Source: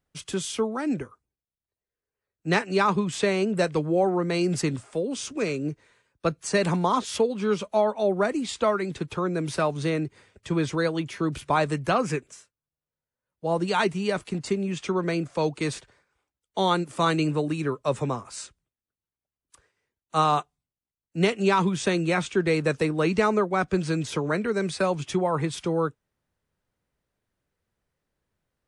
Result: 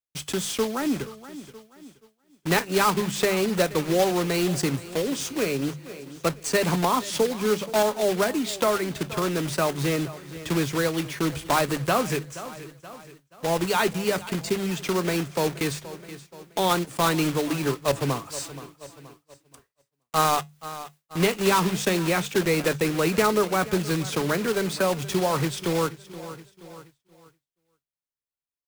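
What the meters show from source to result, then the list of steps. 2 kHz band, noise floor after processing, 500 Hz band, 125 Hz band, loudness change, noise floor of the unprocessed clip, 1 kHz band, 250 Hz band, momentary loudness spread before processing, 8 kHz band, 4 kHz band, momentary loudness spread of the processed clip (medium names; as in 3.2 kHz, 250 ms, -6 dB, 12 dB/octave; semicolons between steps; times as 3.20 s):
+2.0 dB, -83 dBFS, +0.5 dB, 0.0 dB, +1.0 dB, under -85 dBFS, +0.5 dB, +0.5 dB, 8 LU, +6.5 dB, +4.5 dB, 15 LU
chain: block-companded coder 3-bit; on a send: feedback delay 475 ms, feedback 49%, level -19 dB; on the sum: word length cut 12-bit, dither triangular; hum notches 50/100/150/200 Hz; expander -49 dBFS; feedback comb 140 Hz, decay 0.18 s, harmonics all, mix 40%; in parallel at +1 dB: compression, threshold -39 dBFS, peak gain reduction 18 dB; on the sum: trim +2 dB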